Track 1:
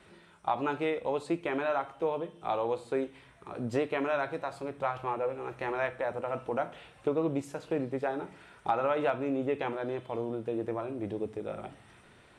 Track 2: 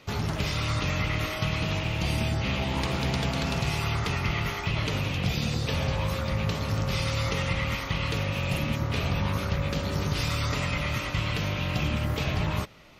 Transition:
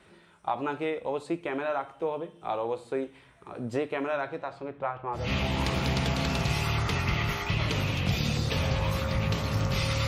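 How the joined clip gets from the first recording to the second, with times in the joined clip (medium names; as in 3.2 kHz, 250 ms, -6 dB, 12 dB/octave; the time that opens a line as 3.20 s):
track 1
4.16–5.32 s: low-pass 8.3 kHz -> 1.2 kHz
5.22 s: go over to track 2 from 2.39 s, crossfade 0.20 s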